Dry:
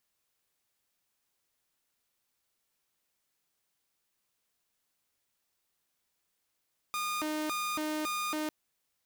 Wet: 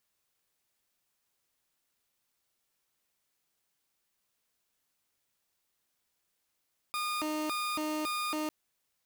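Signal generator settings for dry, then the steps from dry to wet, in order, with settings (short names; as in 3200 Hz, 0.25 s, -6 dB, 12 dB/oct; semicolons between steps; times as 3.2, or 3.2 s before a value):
siren hi-lo 307–1220 Hz 1.8/s saw -29 dBFS 1.55 s
block floating point 3-bit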